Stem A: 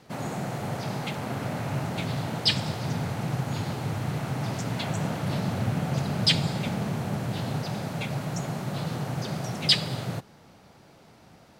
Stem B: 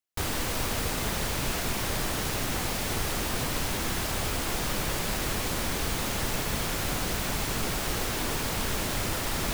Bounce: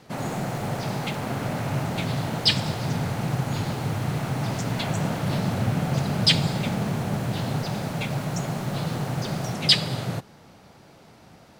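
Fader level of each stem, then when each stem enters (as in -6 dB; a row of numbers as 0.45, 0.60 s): +3.0, -18.0 dB; 0.00, 0.00 s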